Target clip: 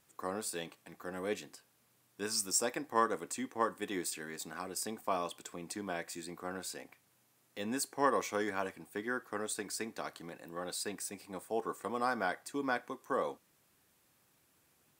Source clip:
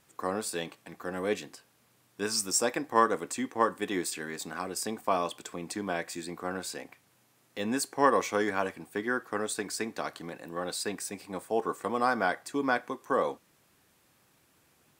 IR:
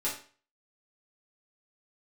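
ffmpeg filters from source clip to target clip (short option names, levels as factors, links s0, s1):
-af "highshelf=f=7600:g=5.5,volume=0.473"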